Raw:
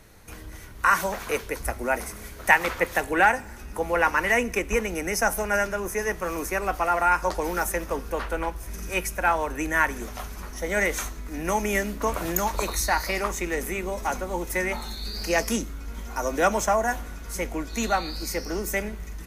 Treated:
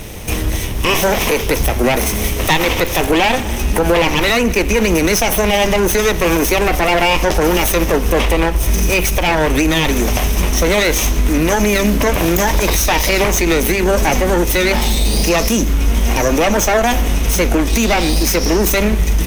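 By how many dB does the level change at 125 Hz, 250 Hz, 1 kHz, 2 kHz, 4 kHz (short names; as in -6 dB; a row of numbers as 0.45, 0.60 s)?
+18.5, +15.5, +7.0, +7.5, +17.5 dB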